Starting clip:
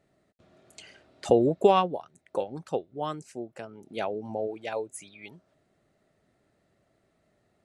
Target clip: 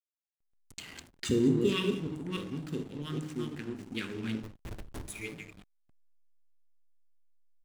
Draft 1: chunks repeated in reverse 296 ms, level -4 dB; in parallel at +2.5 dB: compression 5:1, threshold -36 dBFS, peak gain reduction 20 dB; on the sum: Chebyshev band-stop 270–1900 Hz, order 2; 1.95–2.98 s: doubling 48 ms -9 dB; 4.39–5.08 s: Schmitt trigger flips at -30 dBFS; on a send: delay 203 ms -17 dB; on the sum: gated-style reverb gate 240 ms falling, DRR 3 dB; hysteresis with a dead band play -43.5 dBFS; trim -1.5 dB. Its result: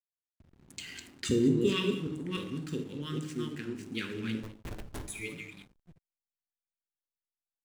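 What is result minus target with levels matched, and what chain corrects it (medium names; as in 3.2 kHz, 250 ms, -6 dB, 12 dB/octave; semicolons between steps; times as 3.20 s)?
hysteresis with a dead band: distortion -6 dB
chunks repeated in reverse 296 ms, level -4 dB; in parallel at +2.5 dB: compression 5:1, threshold -36 dBFS, peak gain reduction 20 dB; on the sum: Chebyshev band-stop 270–1900 Hz, order 2; 1.95–2.98 s: doubling 48 ms -9 dB; 4.39–5.08 s: Schmitt trigger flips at -30 dBFS; on a send: delay 203 ms -17 dB; on the sum: gated-style reverb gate 240 ms falling, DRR 3 dB; hysteresis with a dead band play -36.5 dBFS; trim -1.5 dB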